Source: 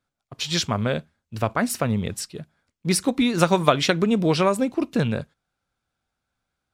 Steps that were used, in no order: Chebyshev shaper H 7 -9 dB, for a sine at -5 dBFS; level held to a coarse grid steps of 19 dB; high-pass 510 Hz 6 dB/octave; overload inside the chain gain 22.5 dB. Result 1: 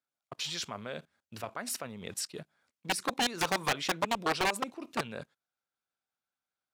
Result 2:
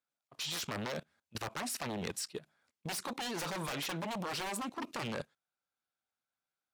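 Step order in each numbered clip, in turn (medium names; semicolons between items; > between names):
level held to a coarse grid > Chebyshev shaper > high-pass > overload inside the chain; Chebyshev shaper > high-pass > overload inside the chain > level held to a coarse grid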